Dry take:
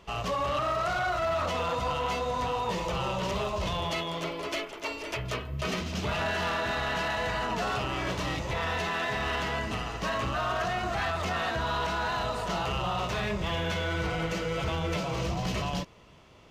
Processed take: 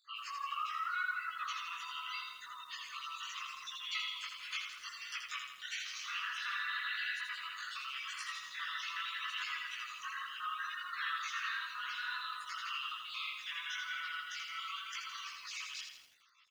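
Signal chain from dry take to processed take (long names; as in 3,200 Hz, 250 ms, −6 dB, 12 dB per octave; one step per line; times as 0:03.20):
time-frequency cells dropped at random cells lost 39%
hard clipping −22 dBFS, distortion −42 dB
spectral tilt +2 dB per octave
gate on every frequency bin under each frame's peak −20 dB strong
0:06.18–0:08.44: high shelf with overshoot 7,600 Hz +8 dB, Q 1.5
slap from a distant wall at 32 metres, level −18 dB
multi-voice chorus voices 2, 0.79 Hz, delay 18 ms, depth 4.4 ms
Butterworth high-pass 1,100 Hz 96 dB per octave
feedback echo at a low word length 82 ms, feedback 55%, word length 10 bits, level −5 dB
level −3.5 dB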